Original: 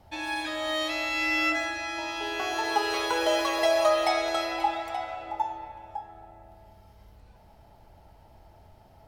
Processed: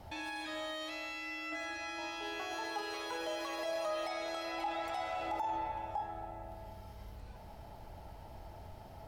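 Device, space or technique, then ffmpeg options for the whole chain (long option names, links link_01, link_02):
de-esser from a sidechain: -filter_complex "[0:a]asettb=1/sr,asplit=3[link_01][link_02][link_03];[link_01]atrim=end=4.934[link_04];[link_02]atrim=start=4.93:end=5.42,asetpts=PTS-STARTPTS,afade=type=in:duration=0.004:curve=qsin,afade=type=out:start_time=0.486:duration=0.004:curve=qsin,bass=frequency=250:gain=0,treble=frequency=4000:gain=6[link_05];[link_03]atrim=start=5.416[link_06];[link_04][link_05]acrossfade=duration=0.004:curve1=hsin:curve2=qsin[link_07];[link_07][link_06]acrossfade=duration=0.004:curve1=qsin:curve2=hsin,asplit=2[link_08][link_09];[link_09]highpass=frequency=6700:poles=1,apad=whole_len=400194[link_10];[link_08][link_10]sidechaincompress=threshold=-53dB:ratio=8:attack=0.74:release=22,volume=4dB"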